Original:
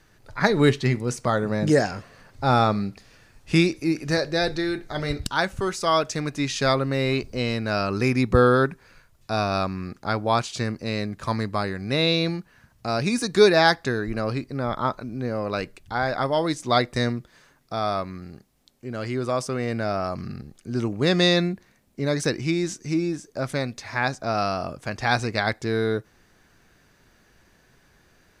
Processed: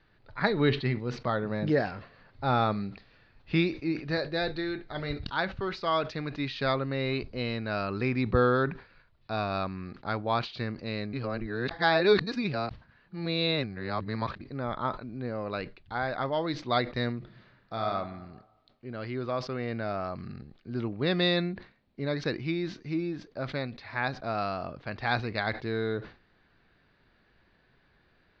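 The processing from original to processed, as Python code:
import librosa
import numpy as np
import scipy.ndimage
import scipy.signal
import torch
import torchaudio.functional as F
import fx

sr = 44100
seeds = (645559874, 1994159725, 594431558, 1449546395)

y = fx.reverb_throw(x, sr, start_s=17.18, length_s=0.67, rt60_s=1.2, drr_db=1.5)
y = fx.edit(y, sr, fx.reverse_span(start_s=11.13, length_s=3.28), tone=tone)
y = scipy.signal.sosfilt(scipy.signal.ellip(4, 1.0, 60, 4300.0, 'lowpass', fs=sr, output='sos'), y)
y = fx.sustainer(y, sr, db_per_s=150.0)
y = F.gain(torch.from_numpy(y), -6.0).numpy()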